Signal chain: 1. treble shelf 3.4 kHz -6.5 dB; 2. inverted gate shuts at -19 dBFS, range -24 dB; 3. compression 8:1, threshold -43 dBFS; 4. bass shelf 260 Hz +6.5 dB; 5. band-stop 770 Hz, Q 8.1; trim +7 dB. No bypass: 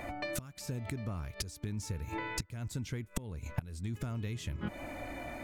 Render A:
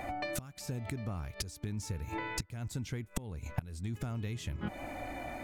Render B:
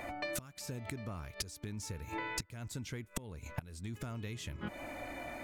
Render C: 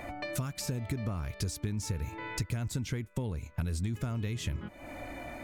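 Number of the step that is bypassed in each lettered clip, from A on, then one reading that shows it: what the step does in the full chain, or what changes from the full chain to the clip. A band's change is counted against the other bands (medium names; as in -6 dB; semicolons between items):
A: 5, 1 kHz band +2.5 dB; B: 4, 125 Hz band -5.0 dB; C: 2, momentary loudness spread change +3 LU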